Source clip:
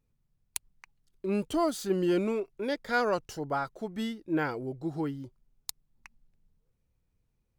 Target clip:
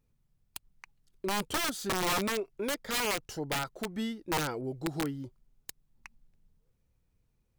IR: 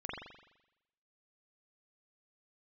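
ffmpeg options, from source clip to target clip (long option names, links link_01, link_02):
-filter_complex "[0:a]asplit=2[link_01][link_02];[link_02]acompressor=threshold=-37dB:ratio=5,volume=0dB[link_03];[link_01][link_03]amix=inputs=2:normalize=0,aeval=exprs='(mod(11.2*val(0)+1,2)-1)/11.2':channel_layout=same,asettb=1/sr,asplit=3[link_04][link_05][link_06];[link_04]atrim=end=4.614[link_07];[link_05]atrim=start=4.61:end=5.04,asetpts=PTS-STARTPTS,afade=type=in:duration=0.004:curve=qsin,afade=type=out:start_time=0.426:duration=0.004:curve=qsin,adynamicequalizer=threshold=0.00398:dfrequency=2500:dqfactor=0.7:tfrequency=2500:tqfactor=0.7:attack=5:release=100:ratio=0.375:range=2:mode=boostabove:tftype=highshelf[link_08];[link_06]atrim=start=5.036[link_09];[link_07][link_08]acrossfade=duration=0.004:curve1=hsin:curve2=qsin[link_10];[link_10][link_09]acrossfade=duration=0.004:curve1=qsin:curve2=hsin,volume=-4dB"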